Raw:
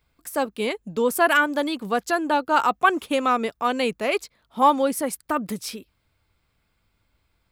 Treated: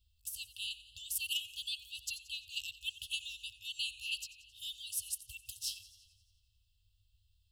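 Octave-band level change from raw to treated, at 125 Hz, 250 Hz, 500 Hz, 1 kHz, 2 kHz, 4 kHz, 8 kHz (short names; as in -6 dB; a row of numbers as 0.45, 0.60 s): n/a, under -40 dB, under -40 dB, under -40 dB, -20.0 dB, -3.5 dB, -5.0 dB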